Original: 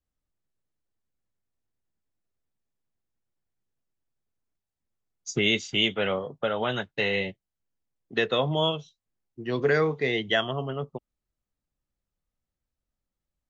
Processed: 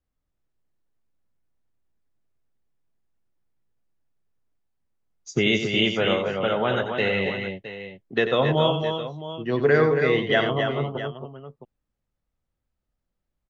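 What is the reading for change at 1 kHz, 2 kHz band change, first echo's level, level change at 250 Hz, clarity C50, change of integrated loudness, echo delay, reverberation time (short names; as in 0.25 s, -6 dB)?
+5.0 dB, +3.0 dB, -9.0 dB, +5.5 dB, none, +3.5 dB, 91 ms, none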